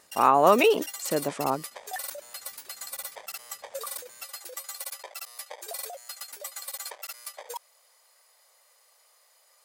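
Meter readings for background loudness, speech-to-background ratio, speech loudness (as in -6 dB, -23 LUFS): -37.5 LUFS, 14.0 dB, -23.5 LUFS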